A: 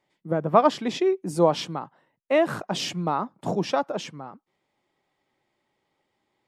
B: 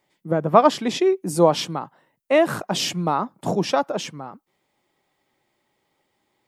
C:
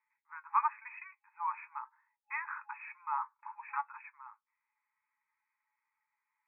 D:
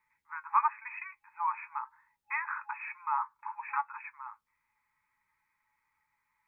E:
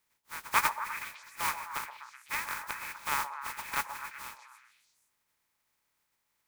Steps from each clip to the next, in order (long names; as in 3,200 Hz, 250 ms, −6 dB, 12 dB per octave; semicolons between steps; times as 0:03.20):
high-shelf EQ 9,000 Hz +11.5 dB; level +3.5 dB
brick-wall band-pass 830–2,600 Hz; flanger 1 Hz, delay 7.5 ms, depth 1.7 ms, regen +57%; level −6 dB
in parallel at −2 dB: downward compressor, threshold −43 dBFS, peak gain reduction 18 dB; on the sum: bass and treble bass +14 dB, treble −2 dB; level +2 dB
compressing power law on the bin magnitudes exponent 0.26; echo through a band-pass that steps 126 ms, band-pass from 740 Hz, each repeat 0.7 octaves, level −6 dB